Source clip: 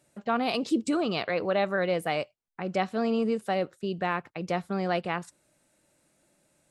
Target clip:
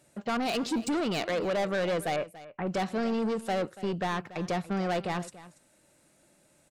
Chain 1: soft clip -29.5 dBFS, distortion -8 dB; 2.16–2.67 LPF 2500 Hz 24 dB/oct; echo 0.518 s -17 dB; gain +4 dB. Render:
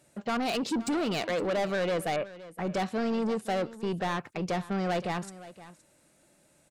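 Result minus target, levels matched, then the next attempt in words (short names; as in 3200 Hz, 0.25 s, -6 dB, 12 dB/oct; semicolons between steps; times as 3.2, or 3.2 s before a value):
echo 0.233 s late
soft clip -29.5 dBFS, distortion -8 dB; 2.16–2.67 LPF 2500 Hz 24 dB/oct; echo 0.285 s -17 dB; gain +4 dB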